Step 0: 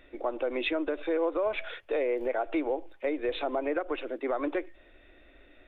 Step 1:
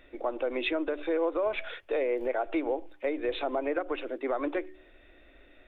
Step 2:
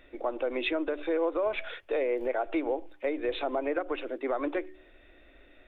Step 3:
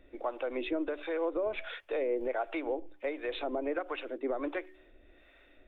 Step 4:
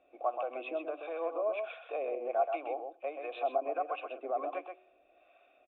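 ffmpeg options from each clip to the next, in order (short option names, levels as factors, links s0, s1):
-af "bandreject=f=74.89:t=h:w=4,bandreject=f=149.78:t=h:w=4,bandreject=f=224.67:t=h:w=4,bandreject=f=299.56:t=h:w=4,bandreject=f=374.45:t=h:w=4"
-af anull
-filter_complex "[0:a]acrossover=split=590[s0][s1];[s0]aeval=exprs='val(0)*(1-0.7/2+0.7/2*cos(2*PI*1.4*n/s))':c=same[s2];[s1]aeval=exprs='val(0)*(1-0.7/2-0.7/2*cos(2*PI*1.4*n/s))':c=same[s3];[s2][s3]amix=inputs=2:normalize=0"
-filter_complex "[0:a]asplit=3[s0][s1][s2];[s0]bandpass=f=730:t=q:w=8,volume=1[s3];[s1]bandpass=f=1090:t=q:w=8,volume=0.501[s4];[s2]bandpass=f=2440:t=q:w=8,volume=0.355[s5];[s3][s4][s5]amix=inputs=3:normalize=0,asplit=2[s6][s7];[s7]adelay=128.3,volume=0.501,highshelf=f=4000:g=-2.89[s8];[s6][s8]amix=inputs=2:normalize=0,volume=2.66"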